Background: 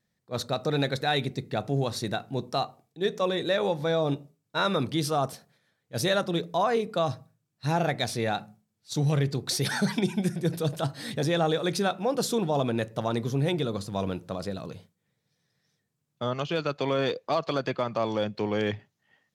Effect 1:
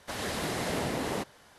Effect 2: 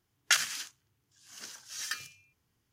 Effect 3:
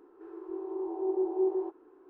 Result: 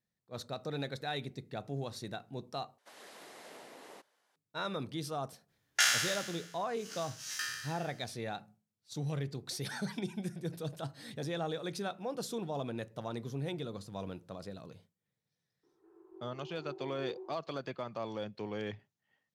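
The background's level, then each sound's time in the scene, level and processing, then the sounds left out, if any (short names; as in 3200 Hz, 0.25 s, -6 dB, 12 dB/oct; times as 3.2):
background -11.5 dB
2.78 replace with 1 -18 dB + HPF 380 Hz
5.48 add 2 -5.5 dB + spectral trails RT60 1.28 s
15.63 add 3 -16 dB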